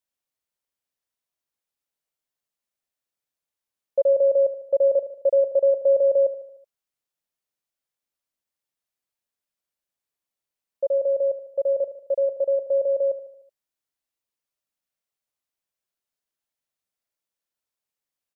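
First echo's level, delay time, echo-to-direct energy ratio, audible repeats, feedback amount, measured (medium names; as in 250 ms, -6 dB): -12.0 dB, 75 ms, -10.5 dB, 4, 51%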